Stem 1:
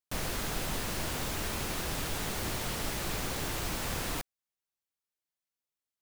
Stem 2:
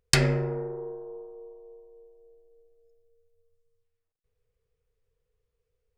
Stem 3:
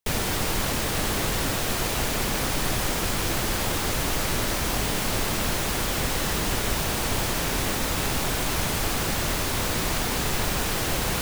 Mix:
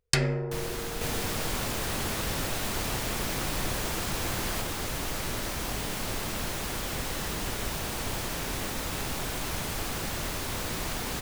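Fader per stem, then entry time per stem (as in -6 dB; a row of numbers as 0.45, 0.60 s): -1.0, -3.5, -7.0 dB; 0.40, 0.00, 0.95 s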